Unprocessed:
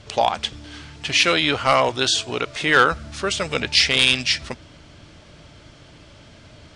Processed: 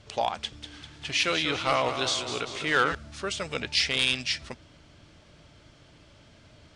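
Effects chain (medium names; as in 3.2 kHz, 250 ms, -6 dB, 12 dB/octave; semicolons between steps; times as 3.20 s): 0.42–2.95 s: modulated delay 196 ms, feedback 59%, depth 111 cents, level -9 dB; trim -8.5 dB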